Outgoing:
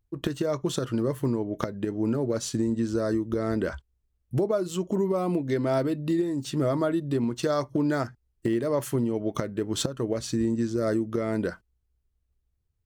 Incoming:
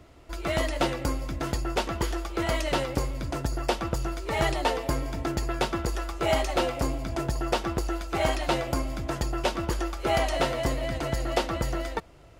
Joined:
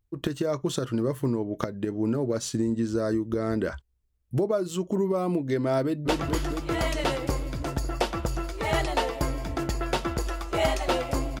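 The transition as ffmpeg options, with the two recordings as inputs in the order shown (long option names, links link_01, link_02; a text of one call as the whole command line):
ffmpeg -i cue0.wav -i cue1.wav -filter_complex "[0:a]apad=whole_dur=11.4,atrim=end=11.4,atrim=end=6.082[link_01];[1:a]atrim=start=1.758:end=7.08[link_02];[link_01][link_02]acrossfade=duration=0.004:curve1=hsin:curve2=hsin,asplit=2[link_03][link_04];[link_04]afade=type=in:start_time=5.83:duration=0.01,afade=type=out:start_time=6.08:duration=0.01,aecho=0:1:220|440|660|880|1100|1320|1540|1760|1980|2200|2420|2640:0.794328|0.595746|0.44681|0.335107|0.25133|0.188498|0.141373|0.10603|0.0795225|0.0596419|0.0447314|0.0335486[link_05];[link_03][link_05]amix=inputs=2:normalize=0" out.wav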